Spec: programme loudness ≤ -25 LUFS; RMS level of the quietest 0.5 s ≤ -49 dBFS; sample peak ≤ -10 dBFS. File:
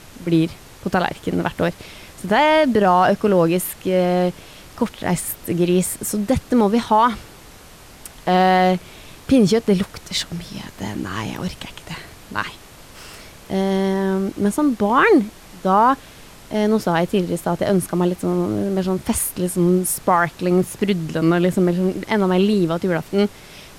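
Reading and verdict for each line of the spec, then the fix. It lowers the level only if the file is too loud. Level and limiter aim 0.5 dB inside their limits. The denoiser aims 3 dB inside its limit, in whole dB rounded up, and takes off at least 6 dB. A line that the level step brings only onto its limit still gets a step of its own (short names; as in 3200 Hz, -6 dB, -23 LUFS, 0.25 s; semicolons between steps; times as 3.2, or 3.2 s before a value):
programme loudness -19.0 LUFS: fail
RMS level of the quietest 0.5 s -43 dBFS: fail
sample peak -5.5 dBFS: fail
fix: gain -6.5 dB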